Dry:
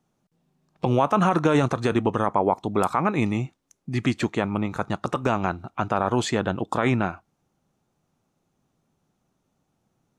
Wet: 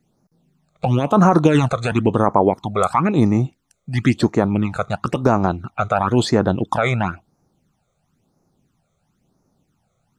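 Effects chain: phase shifter stages 12, 0.98 Hz, lowest notch 280–3200 Hz; trim +7.5 dB

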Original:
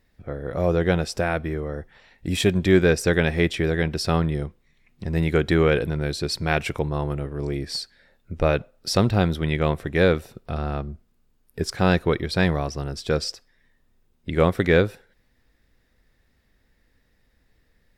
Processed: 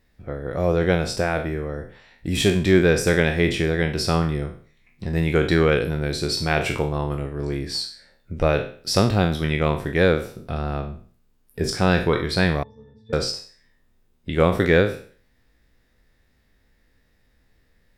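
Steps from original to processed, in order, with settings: spectral sustain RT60 0.45 s; 12.63–13.13 s: pitch-class resonator A, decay 0.39 s

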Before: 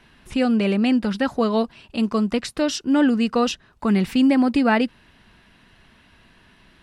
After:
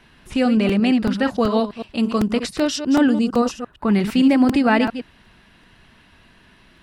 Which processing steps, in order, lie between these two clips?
chunks repeated in reverse 114 ms, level -9 dB; 3.11–3.92 s: peaking EQ 1.4 kHz -> 8.3 kHz -14 dB 0.98 oct; crackling interface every 0.38 s, samples 128, repeat, from 0.31 s; trim +1.5 dB

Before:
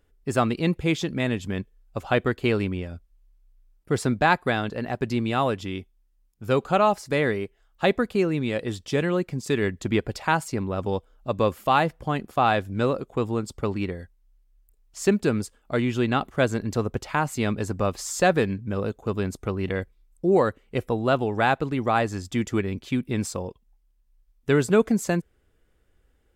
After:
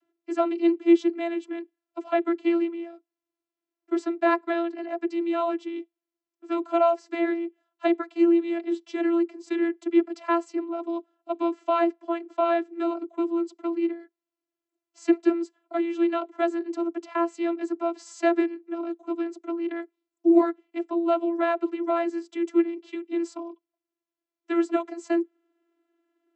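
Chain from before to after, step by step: vocoder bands 32, saw 338 Hz

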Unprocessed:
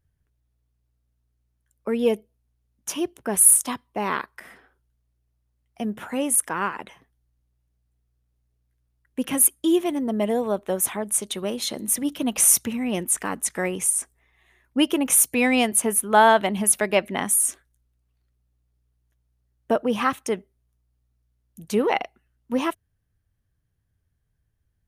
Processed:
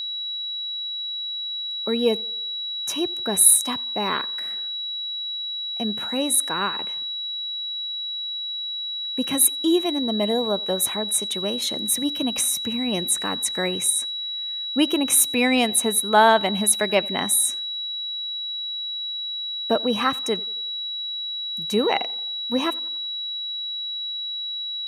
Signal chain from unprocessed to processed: 12.25–12.88 s: compression 6:1, threshold -21 dBFS, peak gain reduction 9 dB; whistle 3.9 kHz -27 dBFS; tape echo 89 ms, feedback 55%, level -23 dB, low-pass 2.8 kHz

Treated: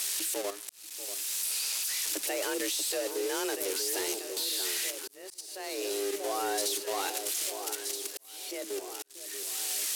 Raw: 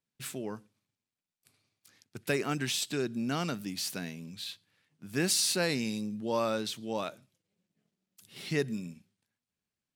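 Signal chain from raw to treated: zero-crossing glitches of -21 dBFS; low-pass 12 kHz 12 dB/octave; level held to a coarse grid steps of 12 dB; bass shelf 84 Hz +7.5 dB; frequency shift +190 Hz; echo whose repeats swap between lows and highs 637 ms, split 1.1 kHz, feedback 75%, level -7.5 dB; slow attack 756 ms; waveshaping leveller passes 1

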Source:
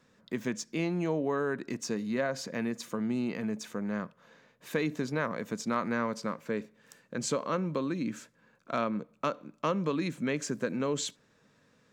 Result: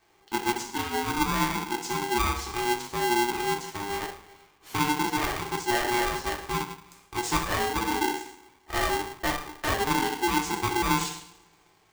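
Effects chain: dynamic bell 300 Hz, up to +4 dB, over -41 dBFS, Q 1.4; two-slope reverb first 0.64 s, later 2.3 s, from -26 dB, DRR -2.5 dB; polarity switched at an audio rate 600 Hz; trim -2.5 dB

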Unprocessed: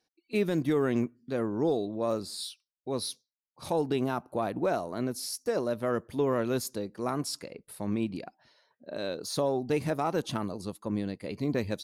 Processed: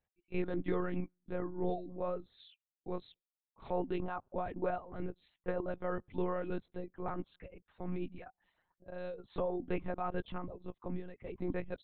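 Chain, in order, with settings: low-pass 2.6 kHz 12 dB/octave; reverb removal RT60 0.67 s; monotone LPC vocoder at 8 kHz 180 Hz; trim -6 dB

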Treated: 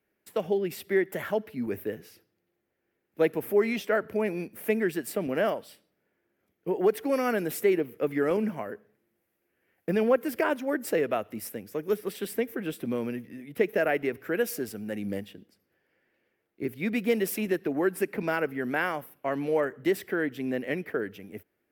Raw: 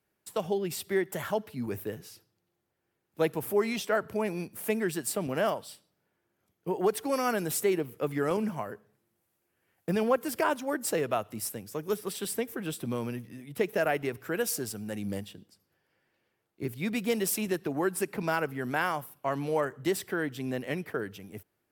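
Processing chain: graphic EQ 125/250/500/1000/2000/4000/8000 Hz -6/+4/+4/-5/+6/-4/-8 dB

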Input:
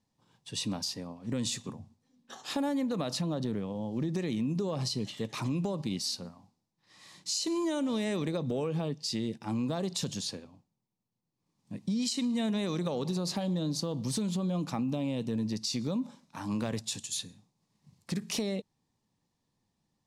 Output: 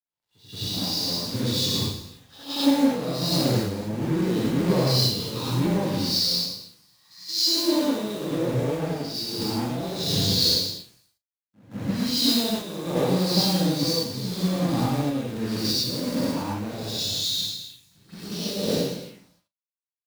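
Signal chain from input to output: spectral sustain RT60 1.45 s; resonant high shelf 5.8 kHz -9.5 dB, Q 1.5; in parallel at -2.5 dB: compressor with a negative ratio -35 dBFS, ratio -0.5; on the sum: touch-sensitive phaser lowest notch 250 Hz, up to 2.1 kHz, full sweep at -30.5 dBFS; random-step tremolo 2.8 Hz; companded quantiser 4-bit; doubling 40 ms -13 dB; pre-echo 175 ms -12 dB; gated-style reverb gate 130 ms rising, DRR -4.5 dB; three bands expanded up and down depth 70%

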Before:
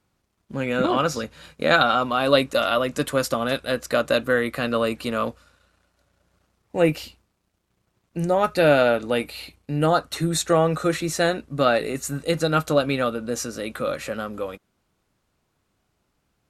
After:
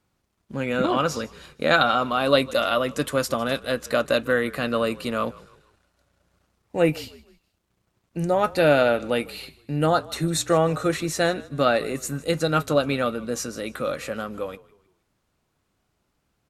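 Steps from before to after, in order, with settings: frequency-shifting echo 155 ms, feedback 39%, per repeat -43 Hz, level -21.5 dB; trim -1 dB

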